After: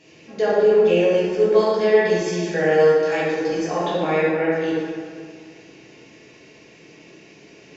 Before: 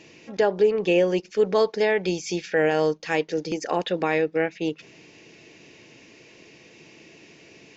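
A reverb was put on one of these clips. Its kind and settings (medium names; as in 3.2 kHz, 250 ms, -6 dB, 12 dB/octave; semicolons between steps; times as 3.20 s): plate-style reverb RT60 2.1 s, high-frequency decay 0.5×, DRR -9 dB; trim -6.5 dB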